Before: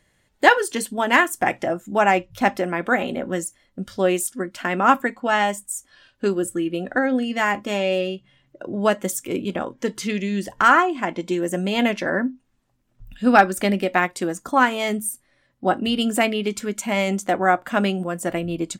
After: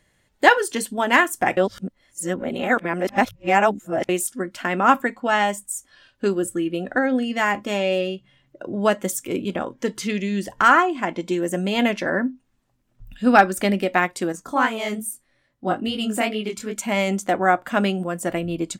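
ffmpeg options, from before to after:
-filter_complex "[0:a]asettb=1/sr,asplit=3[a][b][c];[a]atrim=end=14.324[d];[b]atrim=start=14.32:end=16.76,asetpts=PTS-STARTPTS,afade=t=in:d=0.004:c=qsin,afade=t=out:st=2.436:d=0.004:c=qsin,flanger=delay=18:depth=6.8:speed=2.4[e];[c]atrim=start=16.756[f];[d][e]acrossfade=d=0.004:c1=hsin:c2=qsin[g];[g][f]acrossfade=d=0.004:c1=qsin:c2=hsin,asplit=3[h][i][j];[h]atrim=end=1.572[k];[i]atrim=start=1.568:end=4.092,asetpts=PTS-STARTPTS,areverse[l];[j]atrim=start=4.088[m];[k][l]acrossfade=d=0.004:c1=hsin:c2=hsin[n];[n][m]acrossfade=d=0.004:c1=hsin:c2=hsin"

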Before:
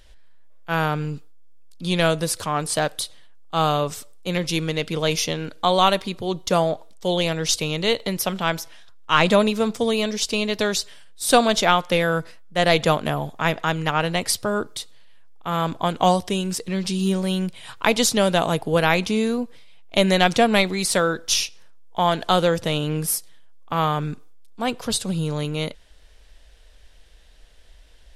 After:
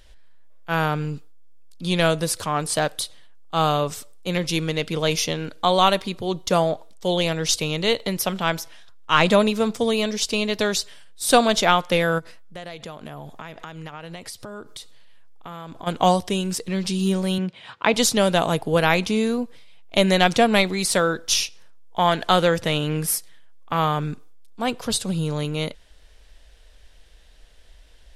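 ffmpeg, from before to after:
-filter_complex "[0:a]asplit=3[a][b][c];[a]afade=t=out:st=12.18:d=0.02[d];[b]acompressor=threshold=-33dB:ratio=8:attack=3.2:release=140:knee=1:detection=peak,afade=t=in:st=12.18:d=0.02,afade=t=out:st=15.86:d=0.02[e];[c]afade=t=in:st=15.86:d=0.02[f];[d][e][f]amix=inputs=3:normalize=0,asettb=1/sr,asplit=3[g][h][i];[g]atrim=end=17.384[j];[h]atrim=start=17.38:end=17.94,asetpts=PTS-STARTPTS,afade=t=in:d=0.004:c=qsin,afade=t=out:st=0.556:d=0.004:c=qsin,highpass=120,lowpass=3.7k[k];[i]atrim=start=17.936[l];[j][k]acrossfade=d=0.004:c1=hsin:c2=qsin[m];[m][l]acrossfade=d=0.004:c1=qsin:c2=hsin,asettb=1/sr,asplit=3[n][o][p];[n]atrim=end=21.994[q];[o]atrim=start=21.99:end=23.77,asetpts=PTS-STARTPTS,afade=t=in:d=0.004:c=qsin,afade=t=out:st=1.776:d=0.004:c=qsin,equalizer=f=1.9k:t=o:w=0.99:g=4.5[r];[p]atrim=start=23.766[s];[q][r]acrossfade=d=0.004:c1=hsin:c2=qsin[t];[t][s]acrossfade=d=0.004:c1=qsin:c2=hsin"

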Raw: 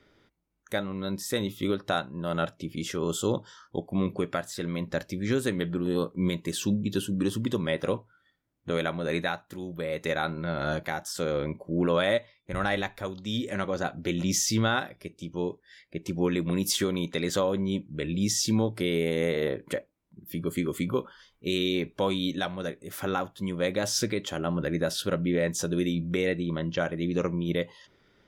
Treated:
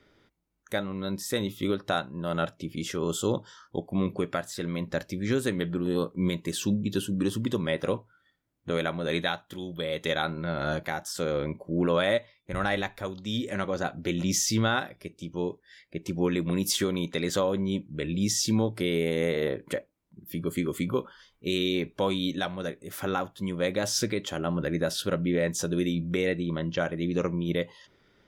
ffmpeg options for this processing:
-filter_complex "[0:a]asettb=1/sr,asplit=3[a][b][c];[a]atrim=end=9.064[d];[b]atrim=start=9.06:end=10.22,asetpts=PTS-STARTPTS,afade=t=in:d=0.004:c=qsin,afade=t=out:st=1.156:d=0.004:c=qsin,equalizer=f=3.3k:w=6.6:g=15[e];[c]atrim=start=10.216[f];[d][e]acrossfade=d=0.004:c1=hsin:c2=qsin[g];[g][f]acrossfade=d=0.004:c1=qsin:c2=hsin"

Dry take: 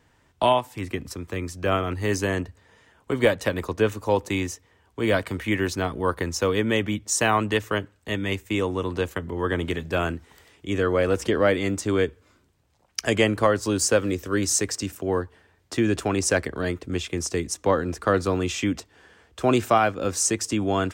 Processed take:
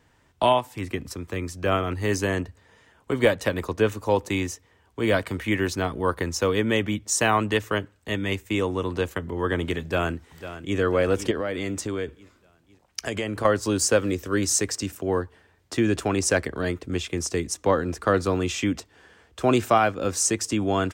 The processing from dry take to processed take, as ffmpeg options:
-filter_complex "[0:a]asplit=2[a][b];[b]afade=t=in:st=9.82:d=0.01,afade=t=out:st=10.78:d=0.01,aecho=0:1:500|1000|1500|2000|2500:0.237137|0.118569|0.0592843|0.0296422|0.0148211[c];[a][c]amix=inputs=2:normalize=0,asettb=1/sr,asplit=3[d][e][f];[d]atrim=end=11.314[g];[e]atrim=start=11.31:end=13.45,asetpts=PTS-STARTPTS,afade=t=in:d=0.004:c=qsin,afade=t=out:st=2.136:d=0.004:c=qsin,acompressor=threshold=-24dB:ratio=6:attack=3.2:release=140:knee=1:detection=peak[h];[f]atrim=start=13.446[i];[g][h]acrossfade=d=0.004:c1=hsin:c2=qsin[j];[j][i]acrossfade=d=0.004:c1=qsin:c2=hsin"

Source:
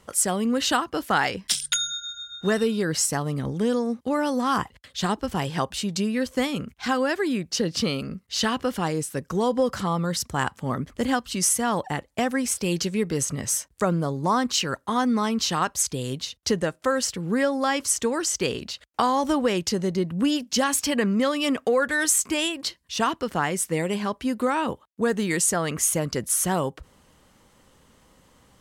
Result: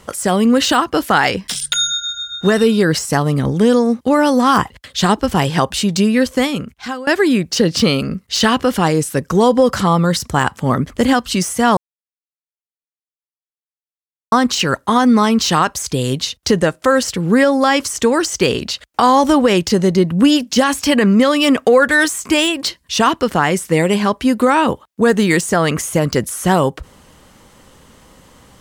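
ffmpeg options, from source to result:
-filter_complex "[0:a]asplit=4[a][b][c][d];[a]atrim=end=7.07,asetpts=PTS-STARTPTS,afade=t=out:st=6.2:d=0.87:silence=0.0944061[e];[b]atrim=start=7.07:end=11.77,asetpts=PTS-STARTPTS,afade=t=in:d=0.004:c=hsin:silence=0.0944061,afade=t=out:st=4.696:d=0.004:c=hsin[f];[c]atrim=start=11.77:end=14.32,asetpts=PTS-STARTPTS,volume=0[g];[d]atrim=start=14.32,asetpts=PTS-STARTPTS,afade=t=in:d=0.004:c=hsin[h];[e][f][g][h]concat=n=4:v=0:a=1,deesser=0.55,alimiter=level_in=13dB:limit=-1dB:release=50:level=0:latency=1,volume=-1.5dB"

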